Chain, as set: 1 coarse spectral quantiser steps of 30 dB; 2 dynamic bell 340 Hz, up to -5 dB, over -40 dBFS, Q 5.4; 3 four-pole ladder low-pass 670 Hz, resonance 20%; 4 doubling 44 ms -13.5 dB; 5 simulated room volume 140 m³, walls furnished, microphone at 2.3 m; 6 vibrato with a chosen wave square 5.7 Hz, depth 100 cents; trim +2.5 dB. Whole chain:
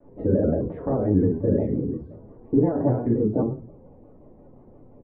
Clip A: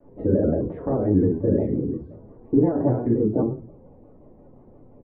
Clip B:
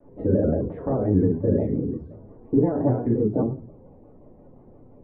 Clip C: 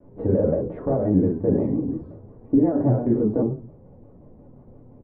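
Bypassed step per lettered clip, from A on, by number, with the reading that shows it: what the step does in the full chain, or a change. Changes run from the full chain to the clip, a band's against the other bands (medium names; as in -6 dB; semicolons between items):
2, momentary loudness spread change -2 LU; 4, momentary loudness spread change -2 LU; 1, crest factor change -1.5 dB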